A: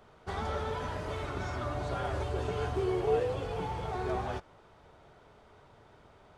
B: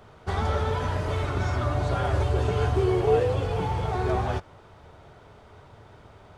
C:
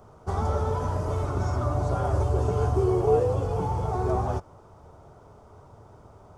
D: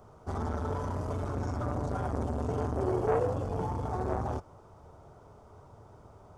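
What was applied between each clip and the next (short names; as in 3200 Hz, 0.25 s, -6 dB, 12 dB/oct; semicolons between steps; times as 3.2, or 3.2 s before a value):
bell 94 Hz +7 dB 0.97 oct; gain +6.5 dB
band shelf 2600 Hz -12.5 dB
core saturation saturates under 680 Hz; gain -3 dB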